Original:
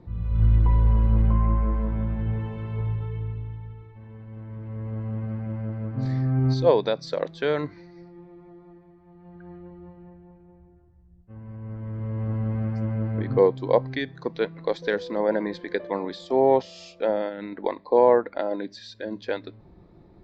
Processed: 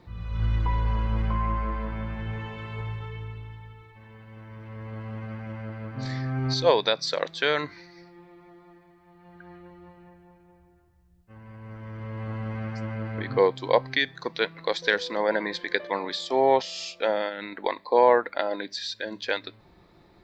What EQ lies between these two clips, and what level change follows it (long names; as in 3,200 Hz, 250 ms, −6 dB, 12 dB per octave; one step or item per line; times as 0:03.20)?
tilt shelving filter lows −9 dB, about 860 Hz
+2.0 dB